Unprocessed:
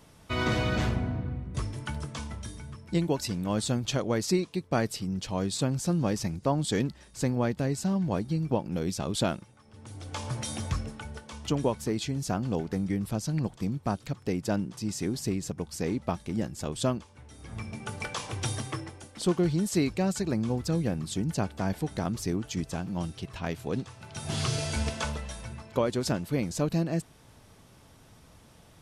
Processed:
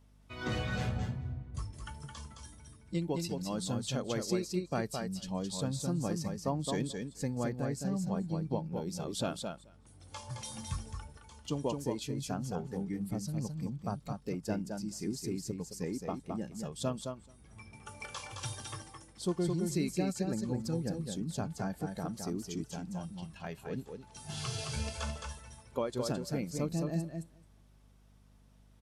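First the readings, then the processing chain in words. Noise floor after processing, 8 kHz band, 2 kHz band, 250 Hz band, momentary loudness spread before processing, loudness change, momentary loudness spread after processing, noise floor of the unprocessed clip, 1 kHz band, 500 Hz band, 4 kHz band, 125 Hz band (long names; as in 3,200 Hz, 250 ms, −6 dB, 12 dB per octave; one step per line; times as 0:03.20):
−61 dBFS, −5.5 dB, −8.0 dB, −6.0 dB, 10 LU, −6.0 dB, 13 LU, −56 dBFS, −6.5 dB, −6.0 dB, −6.5 dB, −6.5 dB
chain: repeating echo 216 ms, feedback 17%, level −4 dB
noise reduction from a noise print of the clip's start 9 dB
mains hum 50 Hz, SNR 25 dB
level −7 dB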